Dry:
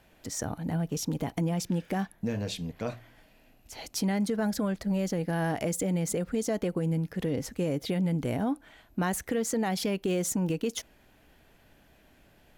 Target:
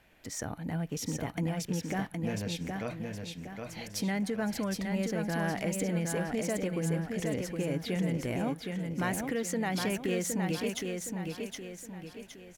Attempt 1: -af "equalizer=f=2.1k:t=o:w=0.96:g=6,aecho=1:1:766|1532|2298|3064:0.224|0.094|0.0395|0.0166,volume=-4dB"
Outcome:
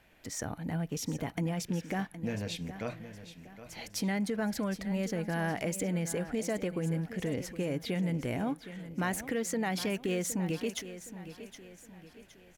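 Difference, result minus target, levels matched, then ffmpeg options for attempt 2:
echo-to-direct -8.5 dB
-af "equalizer=f=2.1k:t=o:w=0.96:g=6,aecho=1:1:766|1532|2298|3064|3830:0.596|0.25|0.105|0.0441|0.0185,volume=-4dB"

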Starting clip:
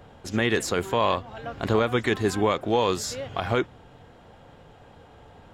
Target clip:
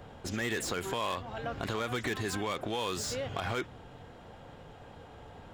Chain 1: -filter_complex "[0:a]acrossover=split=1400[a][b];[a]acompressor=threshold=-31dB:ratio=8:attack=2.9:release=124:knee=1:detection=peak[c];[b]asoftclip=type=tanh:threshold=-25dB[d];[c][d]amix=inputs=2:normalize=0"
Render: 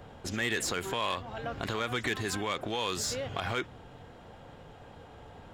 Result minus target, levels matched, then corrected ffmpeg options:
soft clip: distortion -6 dB
-filter_complex "[0:a]acrossover=split=1400[a][b];[a]acompressor=threshold=-31dB:ratio=8:attack=2.9:release=124:knee=1:detection=peak[c];[b]asoftclip=type=tanh:threshold=-33.5dB[d];[c][d]amix=inputs=2:normalize=0"

